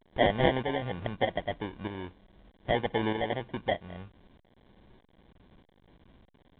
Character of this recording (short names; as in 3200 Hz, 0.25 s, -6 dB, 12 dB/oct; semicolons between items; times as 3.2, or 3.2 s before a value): aliases and images of a low sample rate 1300 Hz, jitter 0%; tremolo saw up 1.6 Hz, depth 60%; a quantiser's noise floor 10-bit, dither none; A-law